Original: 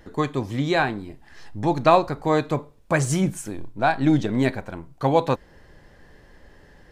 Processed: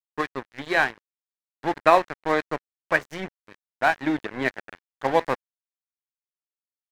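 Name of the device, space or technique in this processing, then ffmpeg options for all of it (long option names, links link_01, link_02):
pocket radio on a weak battery: -af "highpass=320,lowpass=3600,aeval=exprs='sgn(val(0))*max(abs(val(0))-0.0316,0)':channel_layout=same,equalizer=frequency=1800:width_type=o:width=0.56:gain=8"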